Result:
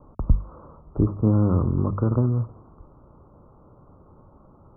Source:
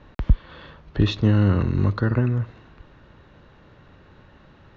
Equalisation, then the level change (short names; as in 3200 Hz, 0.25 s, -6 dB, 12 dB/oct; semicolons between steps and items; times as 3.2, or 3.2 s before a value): steep low-pass 1300 Hz 96 dB/oct; notches 50/100/150/200 Hz; 0.0 dB